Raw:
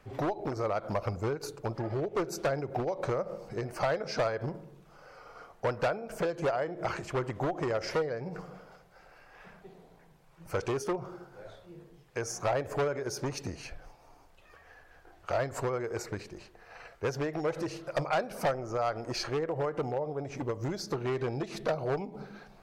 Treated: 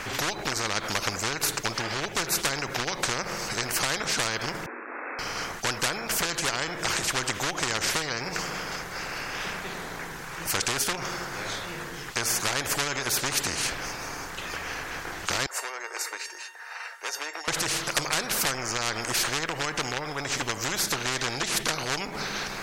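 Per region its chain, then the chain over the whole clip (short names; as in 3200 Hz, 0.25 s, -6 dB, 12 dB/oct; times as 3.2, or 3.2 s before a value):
4.66–5.19 level-crossing sampler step -56.5 dBFS + brick-wall FIR band-pass 240–2700 Hz + air absorption 420 m
15.46–17.48 HPF 570 Hz 24 dB/oct + bell 10000 Hz +6 dB 0.54 oct + resonator 920 Hz, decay 0.18 s, mix 90%
whole clip: fifteen-band EQ 630 Hz -9 dB, 1600 Hz +11 dB, 6300 Hz +6 dB; spectral compressor 4:1; gain +7.5 dB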